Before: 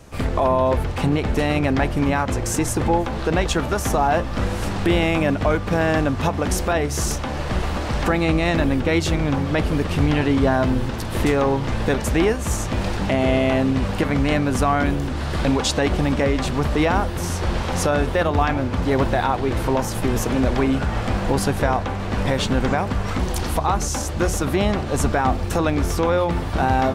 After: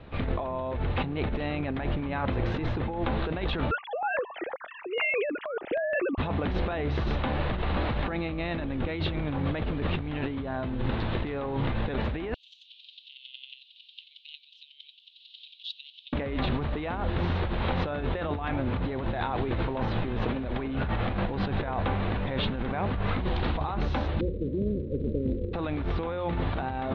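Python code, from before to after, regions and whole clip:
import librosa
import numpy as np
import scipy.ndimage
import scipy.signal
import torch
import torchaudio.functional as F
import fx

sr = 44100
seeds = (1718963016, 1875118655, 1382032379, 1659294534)

y = fx.chain(x, sr, fx.sine_speech(),
    fx.filter_held_notch(hz=6.3, low_hz=550.0, high_hz=2700.0), at=(3.71, 6.18))
y = fx.chain(y, sr, fx.steep_highpass(hz=2900.0, slope=72),
    fx.chopper(hz=11.0, depth_pct=65, duty_pct=15), at=(12.34, 16.13))
y = fx.envelope_flatten(y, sr, power=0.3, at=(24.19, 25.53), fade=0.02)
y = fx.steep_lowpass(y, sr, hz=530.0, slope=96, at=(24.19, 25.53), fade=0.02)
y = fx.quant_float(y, sr, bits=4, at=(24.19, 25.53), fade=0.02)
y = scipy.signal.sosfilt(scipy.signal.cheby1(5, 1.0, 3900.0, 'lowpass', fs=sr, output='sos'), y)
y = fx.over_compress(y, sr, threshold_db=-24.0, ratio=-1.0)
y = y * 10.0 ** (-5.0 / 20.0)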